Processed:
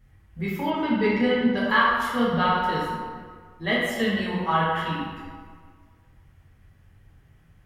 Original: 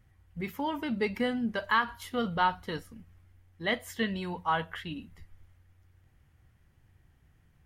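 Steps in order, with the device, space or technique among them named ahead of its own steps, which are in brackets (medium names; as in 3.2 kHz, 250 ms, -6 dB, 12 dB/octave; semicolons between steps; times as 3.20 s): stairwell (reverberation RT60 1.8 s, pre-delay 6 ms, DRR -7 dB); 0.70–1.57 s: low-pass 5.4 kHz 12 dB/octave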